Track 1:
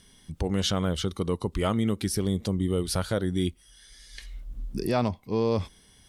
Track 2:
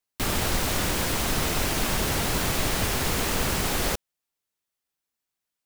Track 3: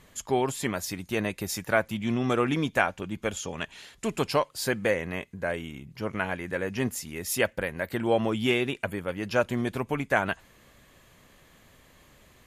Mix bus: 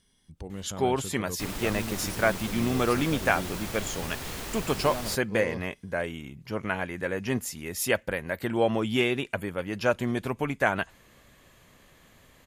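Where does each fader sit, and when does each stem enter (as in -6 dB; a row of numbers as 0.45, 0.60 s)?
-11.5, -11.0, 0.0 dB; 0.00, 1.20, 0.50 s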